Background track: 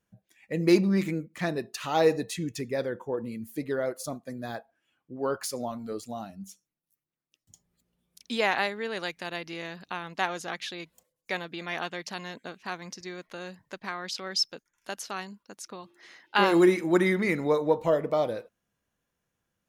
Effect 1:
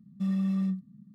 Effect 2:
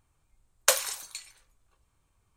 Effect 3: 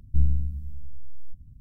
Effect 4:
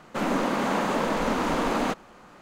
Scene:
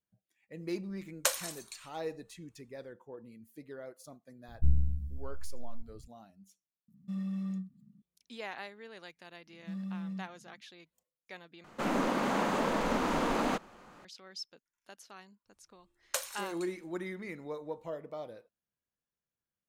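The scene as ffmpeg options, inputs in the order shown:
ffmpeg -i bed.wav -i cue0.wav -i cue1.wav -i cue2.wav -i cue3.wav -filter_complex "[2:a]asplit=2[link_01][link_02];[1:a]asplit=2[link_03][link_04];[0:a]volume=-16dB,asplit=2[link_05][link_06];[link_05]atrim=end=11.644[link_07];[4:a]atrim=end=2.41,asetpts=PTS-STARTPTS,volume=-5dB[link_08];[link_06]atrim=start=14.046[link_09];[link_01]atrim=end=2.36,asetpts=PTS-STARTPTS,volume=-7dB,afade=type=in:duration=0.004:curve=hsin,afade=type=out:start_time=2.356:duration=0.004:curve=hsin,adelay=570[link_10];[3:a]atrim=end=1.6,asetpts=PTS-STARTPTS,volume=-5dB,afade=type=in:duration=0.004:curve=hsin,afade=type=out:start_time=1.596:duration=0.004:curve=hsin,adelay=4480[link_11];[link_03]atrim=end=1.14,asetpts=PTS-STARTPTS,volume=-8dB,afade=type=in:duration=0.004:curve=hsin,afade=type=out:start_time=1.136:duration=0.004:curve=hsin,adelay=6880[link_12];[link_04]atrim=end=1.14,asetpts=PTS-STARTPTS,volume=-11dB,afade=type=in:duration=0.004:curve=hsin,afade=type=out:start_time=1.136:duration=0.004:curve=hsin,adelay=9470[link_13];[link_02]atrim=end=2.36,asetpts=PTS-STARTPTS,volume=-12dB,afade=type=in:duration=0.004:curve=hsin,afade=type=out:start_time=2.356:duration=0.004:curve=hsin,adelay=15460[link_14];[link_07][link_08]acrossfade=duration=0.004:curve1=hsin:curve2=hsin[link_15];[link_15][link_09]acrossfade=duration=0.004:curve1=hsin:curve2=hsin[link_16];[link_16][link_10][link_11][link_12][link_13][link_14]amix=inputs=6:normalize=0" out.wav

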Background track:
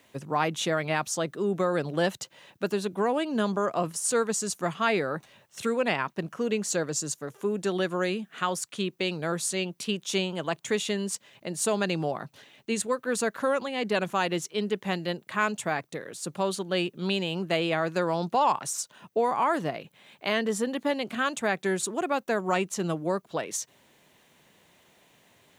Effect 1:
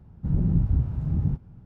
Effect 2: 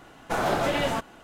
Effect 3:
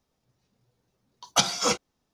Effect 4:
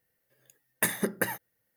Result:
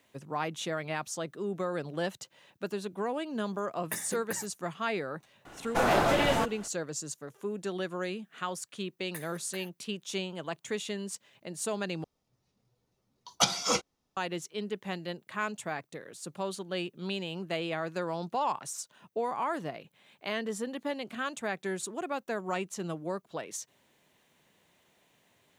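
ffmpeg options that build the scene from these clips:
ffmpeg -i bed.wav -i cue0.wav -i cue1.wav -i cue2.wav -i cue3.wav -filter_complex "[4:a]asplit=2[link_01][link_02];[0:a]volume=-7dB[link_03];[link_02]highpass=700[link_04];[3:a]bandreject=frequency=1600:width=14[link_05];[link_03]asplit=2[link_06][link_07];[link_06]atrim=end=12.044[link_08];[link_05]atrim=end=2.13,asetpts=PTS-STARTPTS,volume=-3.5dB[link_09];[link_07]atrim=start=14.166[link_10];[link_01]atrim=end=1.76,asetpts=PTS-STARTPTS,volume=-9.5dB,afade=type=in:duration=0.004:curve=hsin,afade=type=out:start_time=1.756:duration=0.004:curve=hsin,adelay=136269S[link_11];[2:a]atrim=end=1.23,asetpts=PTS-STARTPTS,afade=type=in:duration=0.004:curve=hsin,afade=type=out:start_time=1.226:duration=0.004:curve=hsin,adelay=240345S[link_12];[link_04]atrim=end=1.76,asetpts=PTS-STARTPTS,volume=-16.5dB,afade=type=in:duration=0.004:curve=hsin,afade=type=out:start_time=1.756:duration=0.004:curve=hsin,adelay=8320[link_13];[link_08][link_09]acrossfade=duration=0.004:curve1=hsin:curve2=hsin[link_14];[link_14][link_10]acrossfade=duration=0.004:curve1=hsin:curve2=hsin[link_15];[link_15][link_11][link_12][link_13]amix=inputs=4:normalize=0" out.wav

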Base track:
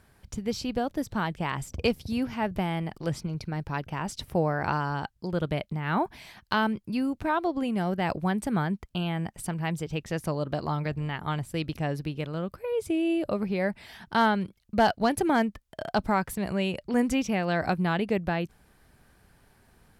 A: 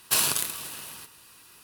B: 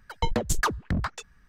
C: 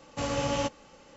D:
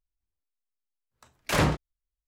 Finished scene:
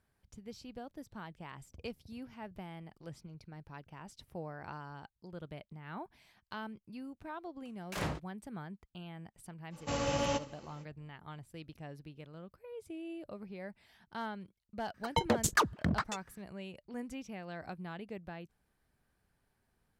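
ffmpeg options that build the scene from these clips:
ffmpeg -i bed.wav -i cue0.wav -i cue1.wav -i cue2.wav -i cue3.wav -filter_complex "[0:a]volume=-17.5dB[link_01];[3:a]aecho=1:1:76|152|228:0.15|0.0479|0.0153[link_02];[2:a]highpass=110[link_03];[4:a]atrim=end=2.27,asetpts=PTS-STARTPTS,volume=-13.5dB,afade=type=in:duration=0.004:curve=hsin,afade=type=out:start_time=2.266:duration=0.004:curve=hsin,adelay=6430[link_04];[link_02]atrim=end=1.16,asetpts=PTS-STARTPTS,volume=-3.5dB,afade=type=in:duration=0.05,afade=type=out:start_time=1.11:duration=0.05,adelay=427770S[link_05];[link_03]atrim=end=1.48,asetpts=PTS-STARTPTS,volume=-2dB,afade=type=in:duration=0.004:curve=hsin,afade=type=out:start_time=1.476:duration=0.004:curve=hsin,adelay=14940[link_06];[link_01][link_04][link_05][link_06]amix=inputs=4:normalize=0" out.wav

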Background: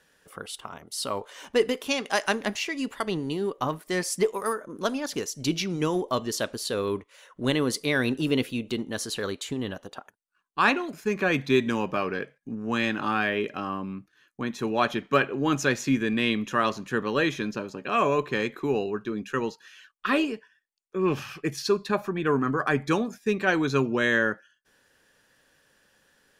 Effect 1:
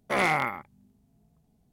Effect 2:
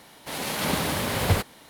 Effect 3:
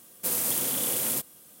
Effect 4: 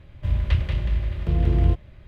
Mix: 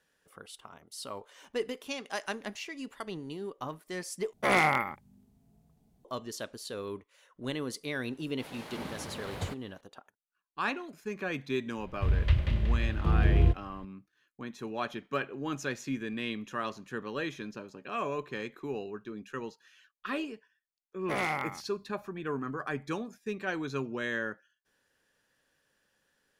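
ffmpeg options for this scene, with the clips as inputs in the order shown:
ffmpeg -i bed.wav -i cue0.wav -i cue1.wav -i cue2.wav -i cue3.wav -filter_complex "[1:a]asplit=2[link_01][link_02];[0:a]volume=-10.5dB[link_03];[2:a]lowpass=frequency=2900:poles=1[link_04];[link_03]asplit=2[link_05][link_06];[link_05]atrim=end=4.334[link_07];[link_01]atrim=end=1.72[link_08];[link_06]atrim=start=6.046[link_09];[link_04]atrim=end=1.69,asetpts=PTS-STARTPTS,volume=-14dB,afade=type=in:duration=0.004:curve=hsin,afade=type=out:start_time=1.686:duration=0.004:curve=hsin,adelay=8120[link_10];[4:a]atrim=end=2.07,asetpts=PTS-STARTPTS,volume=-4dB,afade=type=in:duration=0.004:curve=hsin,afade=type=out:start_time=2.066:duration=0.004:curve=hsin,adelay=519498S[link_11];[link_02]atrim=end=1.72,asetpts=PTS-STARTPTS,volume=-7dB,afade=type=in:duration=0.004:curve=hsin,afade=type=out:start_time=1.716:duration=0.004:curve=hsin,adelay=20990[link_12];[link_07][link_08]acrossfade=duration=0.004:curve1=hsin:curve2=hsin[link_13];[link_13][link_09]acrossfade=duration=0.004:curve1=hsin:curve2=hsin[link_14];[link_14][link_10][link_11][link_12]amix=inputs=4:normalize=0" out.wav

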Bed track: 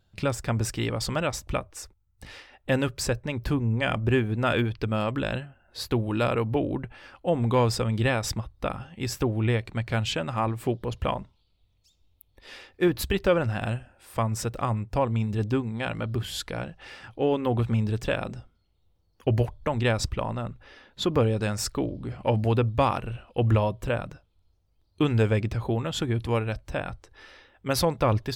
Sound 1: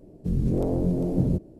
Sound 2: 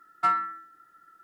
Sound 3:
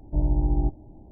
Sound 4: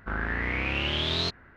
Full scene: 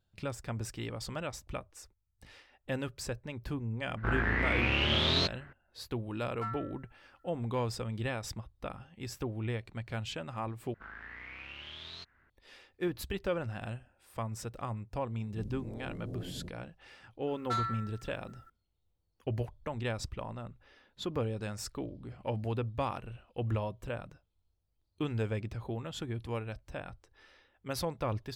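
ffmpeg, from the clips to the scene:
ffmpeg -i bed.wav -i cue0.wav -i cue1.wav -i cue2.wav -i cue3.wav -filter_complex "[4:a]asplit=2[link_01][link_02];[2:a]asplit=2[link_03][link_04];[0:a]volume=-11dB[link_05];[link_02]acrossover=split=93|910[link_06][link_07][link_08];[link_06]acompressor=threshold=-49dB:ratio=4[link_09];[link_07]acompressor=threshold=-49dB:ratio=4[link_10];[link_08]acompressor=threshold=-32dB:ratio=4[link_11];[link_09][link_10][link_11]amix=inputs=3:normalize=0[link_12];[1:a]acompressor=threshold=-25dB:ratio=6:attack=3.2:release=140:knee=1:detection=peak[link_13];[link_04]asoftclip=type=tanh:threshold=-25.5dB[link_14];[link_05]asplit=2[link_15][link_16];[link_15]atrim=end=10.744[link_17];[link_12]atrim=end=1.56,asetpts=PTS-STARTPTS,volume=-12dB[link_18];[link_16]atrim=start=12.296[link_19];[link_01]atrim=end=1.56,asetpts=PTS-STARTPTS,volume=-0.5dB,afade=type=in:duration=0.004:curve=hsin,afade=type=out:start_time=1.556:duration=0.004:curve=hsin,adelay=175077S[link_20];[link_03]atrim=end=1.23,asetpts=PTS-STARTPTS,volume=-15.5dB,afade=type=in:duration=0.004:curve=hsin,afade=type=out:start_time=1.226:duration=0.004:curve=hsin,adelay=272538S[link_21];[link_13]atrim=end=1.59,asetpts=PTS-STARTPTS,volume=-14.5dB,afade=type=in:duration=0.004:curve=hsin,afade=type=out:start_time=1.586:duration=0.004:curve=hsin,adelay=15110[link_22];[link_14]atrim=end=1.23,asetpts=PTS-STARTPTS,volume=-4dB,afade=type=in:duration=0.004:curve=hsin,afade=type=out:start_time=1.226:duration=0.004:curve=hsin,adelay=17270[link_23];[link_17][link_18]acrossfade=duration=0.004:curve1=hsin:curve2=hsin[link_24];[link_24][link_19]acrossfade=duration=0.004:curve1=hsin:curve2=hsin[link_25];[link_25][link_20][link_21][link_22][link_23]amix=inputs=5:normalize=0" out.wav

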